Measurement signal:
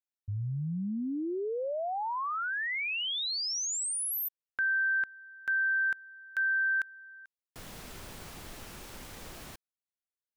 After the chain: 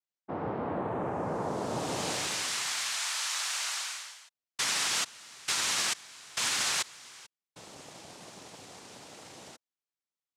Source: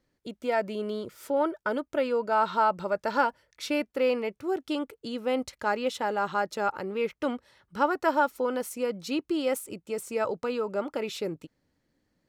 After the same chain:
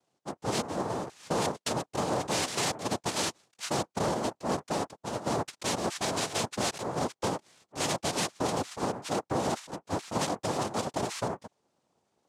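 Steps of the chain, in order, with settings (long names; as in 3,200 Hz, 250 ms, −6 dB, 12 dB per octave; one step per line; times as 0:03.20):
cochlear-implant simulation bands 2
brickwall limiter −19.5 dBFS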